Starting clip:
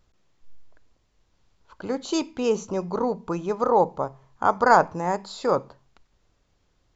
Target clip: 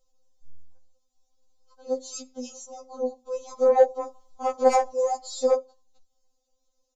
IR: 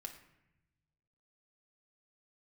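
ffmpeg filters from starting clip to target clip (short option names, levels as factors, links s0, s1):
-filter_complex "[0:a]firequalizer=gain_entry='entry(180,0);entry(290,-11);entry(540,6);entry(1700,-20);entry(3600,-1);entry(6600,8)':delay=0.05:min_phase=1,asplit=3[s0][s1][s2];[s0]afade=t=out:st=3.33:d=0.02[s3];[s1]acontrast=64,afade=t=in:st=3.33:d=0.02,afade=t=out:st=5.53:d=0.02[s4];[s2]afade=t=in:st=5.53:d=0.02[s5];[s3][s4][s5]amix=inputs=3:normalize=0,afftfilt=real='re*3.46*eq(mod(b,12),0)':imag='im*3.46*eq(mod(b,12),0)':win_size=2048:overlap=0.75,volume=0.562"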